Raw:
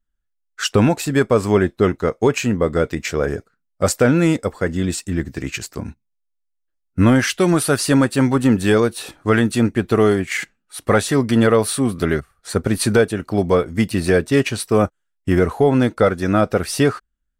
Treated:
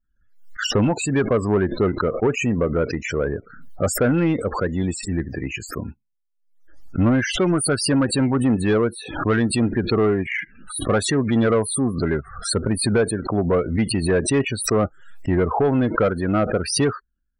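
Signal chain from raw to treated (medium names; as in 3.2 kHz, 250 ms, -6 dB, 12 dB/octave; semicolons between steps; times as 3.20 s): loudest bins only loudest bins 32; saturation -10 dBFS, distortion -16 dB; swell ahead of each attack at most 83 dB/s; trim -1.5 dB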